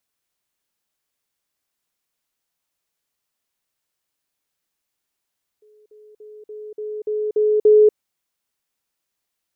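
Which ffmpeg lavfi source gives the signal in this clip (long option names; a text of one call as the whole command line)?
ffmpeg -f lavfi -i "aevalsrc='pow(10,(-50+6*floor(t/0.29))/20)*sin(2*PI*425*t)*clip(min(mod(t,0.29),0.24-mod(t,0.29))/0.005,0,1)':duration=2.32:sample_rate=44100" out.wav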